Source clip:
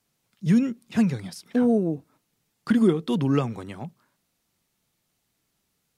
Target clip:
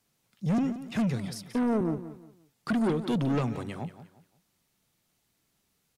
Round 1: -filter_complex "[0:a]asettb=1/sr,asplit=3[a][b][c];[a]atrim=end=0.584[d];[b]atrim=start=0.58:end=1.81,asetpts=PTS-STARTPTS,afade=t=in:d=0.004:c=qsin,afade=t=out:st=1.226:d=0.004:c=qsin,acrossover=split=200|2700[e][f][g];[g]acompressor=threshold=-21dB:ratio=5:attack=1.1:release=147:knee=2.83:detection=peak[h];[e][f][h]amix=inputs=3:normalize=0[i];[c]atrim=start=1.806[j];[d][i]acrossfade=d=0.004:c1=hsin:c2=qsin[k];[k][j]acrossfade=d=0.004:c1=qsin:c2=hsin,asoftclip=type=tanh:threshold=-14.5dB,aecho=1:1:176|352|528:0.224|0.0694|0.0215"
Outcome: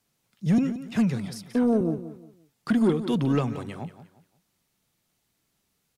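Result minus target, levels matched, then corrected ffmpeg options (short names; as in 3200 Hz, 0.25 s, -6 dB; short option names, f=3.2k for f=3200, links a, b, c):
soft clip: distortion -9 dB
-filter_complex "[0:a]asettb=1/sr,asplit=3[a][b][c];[a]atrim=end=0.584[d];[b]atrim=start=0.58:end=1.81,asetpts=PTS-STARTPTS,afade=t=in:d=0.004:c=qsin,afade=t=out:st=1.226:d=0.004:c=qsin,acrossover=split=200|2700[e][f][g];[g]acompressor=threshold=-21dB:ratio=5:attack=1.1:release=147:knee=2.83:detection=peak[h];[e][f][h]amix=inputs=3:normalize=0[i];[c]atrim=start=1.806[j];[d][i]acrossfade=d=0.004:c1=hsin:c2=qsin[k];[k][j]acrossfade=d=0.004:c1=qsin:c2=hsin,asoftclip=type=tanh:threshold=-23dB,aecho=1:1:176|352|528:0.224|0.0694|0.0215"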